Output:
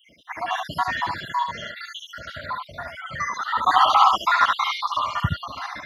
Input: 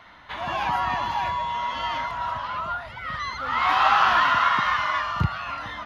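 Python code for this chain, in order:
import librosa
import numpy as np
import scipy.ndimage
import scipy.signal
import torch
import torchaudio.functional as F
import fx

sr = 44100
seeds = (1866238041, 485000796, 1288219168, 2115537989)

y = fx.spec_dropout(x, sr, seeds[0], share_pct=74)
y = scipy.signal.sosfilt(scipy.signal.butter(2, 93.0, 'highpass', fs=sr, output='sos'), y)
y = fx.high_shelf(y, sr, hz=4700.0, db=8.0)
y = fx.notch(y, sr, hz=2600.0, q=6.0)
y = fx.room_early_taps(y, sr, ms=(61, 73), db=(-12.0, -4.5))
y = F.gain(torch.from_numpy(y), 4.5).numpy()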